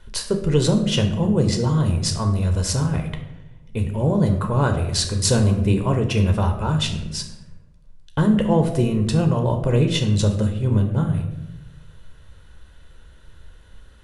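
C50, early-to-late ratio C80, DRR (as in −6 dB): 8.5 dB, 11.0 dB, 4.0 dB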